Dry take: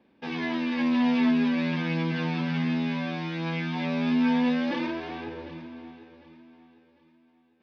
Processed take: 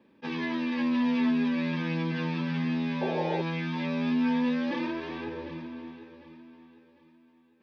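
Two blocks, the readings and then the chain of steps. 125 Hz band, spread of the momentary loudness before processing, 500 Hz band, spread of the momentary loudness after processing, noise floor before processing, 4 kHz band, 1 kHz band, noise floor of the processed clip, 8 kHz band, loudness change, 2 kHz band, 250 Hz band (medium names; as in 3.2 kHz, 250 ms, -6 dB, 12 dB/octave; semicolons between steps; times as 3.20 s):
-2.0 dB, 16 LU, +0.5 dB, 13 LU, -64 dBFS, -3.5 dB, -1.5 dB, -62 dBFS, no reading, -2.5 dB, -3.0 dB, -2.5 dB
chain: in parallel at +2 dB: compression, threshold -34 dBFS, peak gain reduction 13.5 dB; on the sum: painted sound noise, 3.01–3.42 s, 360–910 Hz -24 dBFS; comb of notches 720 Hz; attacks held to a fixed rise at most 580 dB/s; trim -5 dB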